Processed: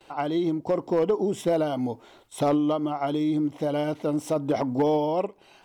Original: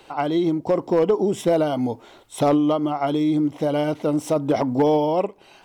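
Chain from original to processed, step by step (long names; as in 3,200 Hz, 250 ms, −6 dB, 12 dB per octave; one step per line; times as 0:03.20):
noise gate with hold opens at −41 dBFS
level −4.5 dB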